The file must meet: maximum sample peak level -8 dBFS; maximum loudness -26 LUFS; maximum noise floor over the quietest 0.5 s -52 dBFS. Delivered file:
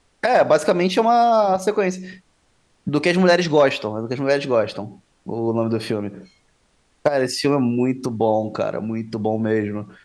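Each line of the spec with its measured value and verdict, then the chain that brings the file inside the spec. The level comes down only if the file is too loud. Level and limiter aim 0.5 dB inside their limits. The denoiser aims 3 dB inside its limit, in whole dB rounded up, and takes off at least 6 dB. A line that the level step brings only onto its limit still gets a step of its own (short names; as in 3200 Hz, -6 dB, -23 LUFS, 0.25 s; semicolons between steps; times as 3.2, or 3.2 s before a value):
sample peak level -4.0 dBFS: fail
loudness -20.0 LUFS: fail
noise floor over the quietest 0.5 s -62 dBFS: OK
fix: gain -6.5 dB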